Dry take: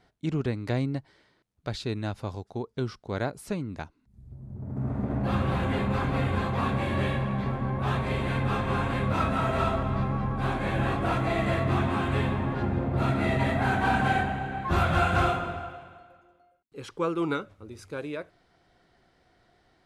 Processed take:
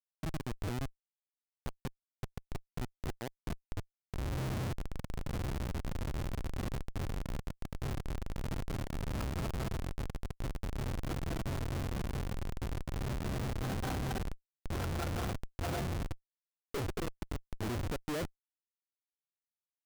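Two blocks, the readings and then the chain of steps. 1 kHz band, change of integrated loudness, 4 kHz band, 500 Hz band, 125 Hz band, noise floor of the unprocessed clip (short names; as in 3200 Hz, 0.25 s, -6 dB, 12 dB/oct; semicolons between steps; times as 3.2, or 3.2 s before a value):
-16.0 dB, -11.5 dB, -8.0 dB, -12.0 dB, -9.5 dB, -67 dBFS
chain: Wiener smoothing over 41 samples; flipped gate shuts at -28 dBFS, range -29 dB; Schmitt trigger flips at -52.5 dBFS; gain +16 dB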